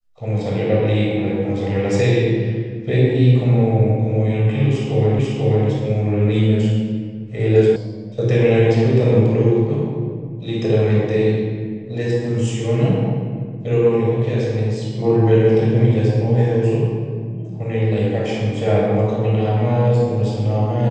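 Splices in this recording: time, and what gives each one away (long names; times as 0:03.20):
0:05.19: the same again, the last 0.49 s
0:07.76: cut off before it has died away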